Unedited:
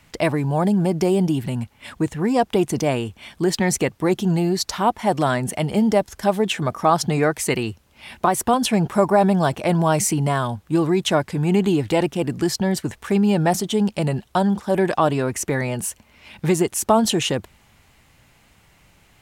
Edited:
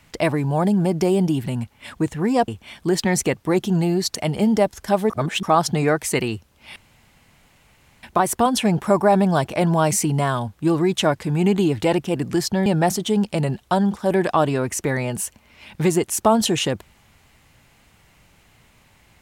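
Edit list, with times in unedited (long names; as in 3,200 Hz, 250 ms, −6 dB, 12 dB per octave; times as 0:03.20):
0:02.48–0:03.03: remove
0:04.70–0:05.50: remove
0:06.45–0:06.78: reverse
0:08.11: splice in room tone 1.27 s
0:12.74–0:13.30: remove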